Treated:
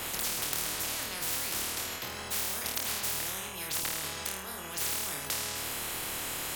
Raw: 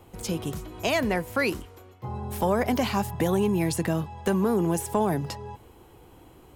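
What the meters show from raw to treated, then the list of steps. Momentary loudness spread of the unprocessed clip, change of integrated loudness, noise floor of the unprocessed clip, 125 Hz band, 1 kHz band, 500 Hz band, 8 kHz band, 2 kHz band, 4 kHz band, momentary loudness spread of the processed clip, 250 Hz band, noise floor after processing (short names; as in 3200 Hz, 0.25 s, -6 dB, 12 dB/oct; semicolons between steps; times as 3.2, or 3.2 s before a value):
12 LU, -5.5 dB, -52 dBFS, -17.5 dB, -9.5 dB, -17.0 dB, +7.0 dB, -3.5 dB, +4.0 dB, 5 LU, -20.0 dB, -41 dBFS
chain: negative-ratio compressor -35 dBFS, ratio -1; short-mantissa float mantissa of 8-bit; flutter echo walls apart 4.5 m, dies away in 0.52 s; spectral compressor 10:1; gain +4 dB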